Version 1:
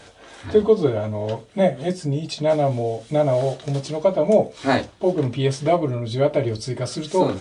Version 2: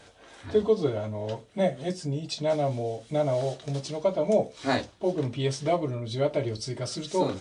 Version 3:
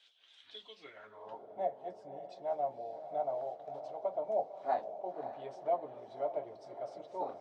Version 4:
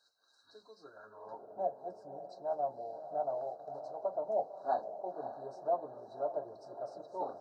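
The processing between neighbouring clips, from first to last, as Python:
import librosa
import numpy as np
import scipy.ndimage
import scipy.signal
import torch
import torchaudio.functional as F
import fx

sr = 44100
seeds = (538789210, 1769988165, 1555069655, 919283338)

y1 = fx.dynamic_eq(x, sr, hz=5400.0, q=0.88, threshold_db=-44.0, ratio=4.0, max_db=5)
y1 = y1 * librosa.db_to_amplitude(-7.0)
y2 = fx.echo_diffused(y1, sr, ms=564, feedback_pct=50, wet_db=-9.5)
y2 = fx.hpss(y2, sr, part='percussive', gain_db=6)
y2 = fx.filter_sweep_bandpass(y2, sr, from_hz=3300.0, to_hz=750.0, start_s=0.66, end_s=1.4, q=4.5)
y2 = y2 * librosa.db_to_amplitude(-5.5)
y3 = fx.brickwall_bandstop(y2, sr, low_hz=1700.0, high_hz=3800.0)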